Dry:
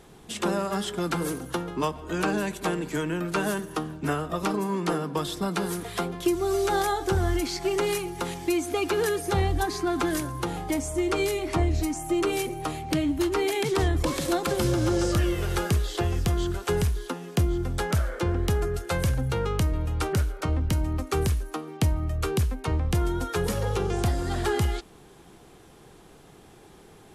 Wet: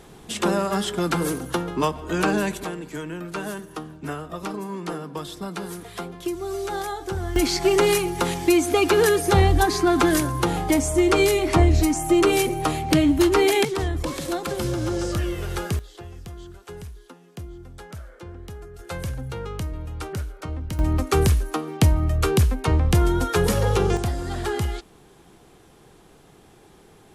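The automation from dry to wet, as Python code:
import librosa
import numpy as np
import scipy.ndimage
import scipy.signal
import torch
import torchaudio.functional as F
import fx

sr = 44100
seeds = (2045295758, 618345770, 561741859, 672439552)

y = fx.gain(x, sr, db=fx.steps((0.0, 4.5), (2.64, -4.0), (7.36, 7.5), (13.65, -1.5), (15.79, -13.5), (18.79, -5.0), (20.79, 6.5), (23.97, -0.5)))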